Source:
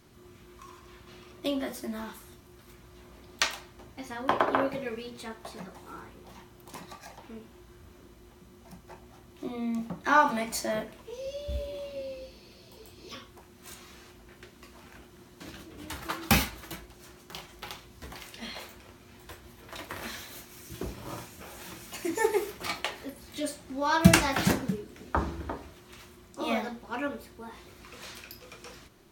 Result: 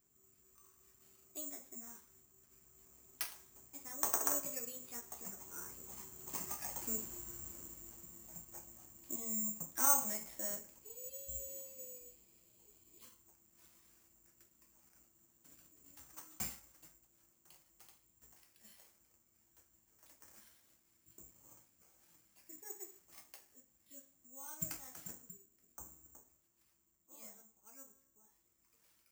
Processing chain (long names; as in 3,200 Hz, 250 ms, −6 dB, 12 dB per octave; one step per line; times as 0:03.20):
source passing by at 0:06.97, 21 m/s, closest 12 metres
tuned comb filter 270 Hz, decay 1 s, mix 50%
bad sample-rate conversion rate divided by 6×, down filtered, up zero stuff
level +3.5 dB